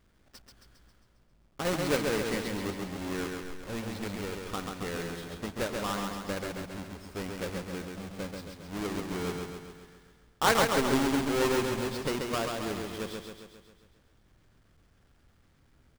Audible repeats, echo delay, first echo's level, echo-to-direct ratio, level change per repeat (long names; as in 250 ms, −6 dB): 7, 135 ms, −4.0 dB, −2.5 dB, −5.0 dB